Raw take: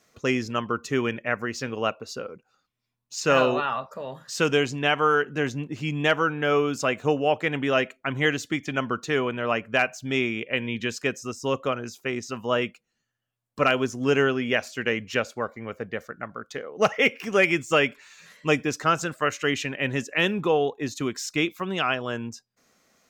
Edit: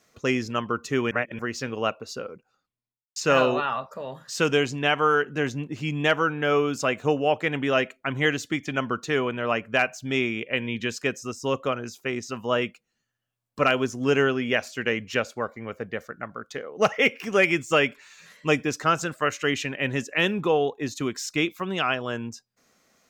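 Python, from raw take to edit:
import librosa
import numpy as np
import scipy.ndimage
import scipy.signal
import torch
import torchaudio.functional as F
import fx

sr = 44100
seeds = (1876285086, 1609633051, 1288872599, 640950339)

y = fx.studio_fade_out(x, sr, start_s=2.28, length_s=0.88)
y = fx.edit(y, sr, fx.reverse_span(start_s=1.11, length_s=0.28), tone=tone)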